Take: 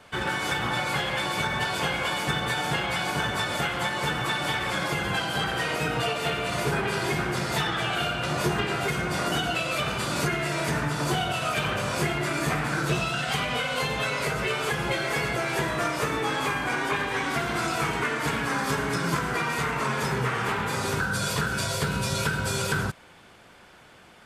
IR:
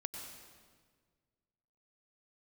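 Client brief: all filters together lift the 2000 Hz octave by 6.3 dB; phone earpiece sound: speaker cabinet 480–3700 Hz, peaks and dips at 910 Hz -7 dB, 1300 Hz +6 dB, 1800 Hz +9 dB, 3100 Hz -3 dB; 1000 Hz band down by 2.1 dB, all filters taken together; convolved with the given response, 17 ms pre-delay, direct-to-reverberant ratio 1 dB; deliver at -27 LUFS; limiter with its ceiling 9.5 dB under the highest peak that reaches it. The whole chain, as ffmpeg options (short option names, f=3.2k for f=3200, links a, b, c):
-filter_complex "[0:a]equalizer=f=1k:t=o:g=-8.5,equalizer=f=2k:t=o:g=4,alimiter=limit=-22dB:level=0:latency=1,asplit=2[a][b];[1:a]atrim=start_sample=2205,adelay=17[c];[b][c]afir=irnorm=-1:irlink=0,volume=0dB[d];[a][d]amix=inputs=2:normalize=0,highpass=480,equalizer=f=910:t=q:w=4:g=-7,equalizer=f=1.3k:t=q:w=4:g=6,equalizer=f=1.8k:t=q:w=4:g=9,equalizer=f=3.1k:t=q:w=4:g=-3,lowpass=f=3.7k:w=0.5412,lowpass=f=3.7k:w=1.3066,volume=-2dB"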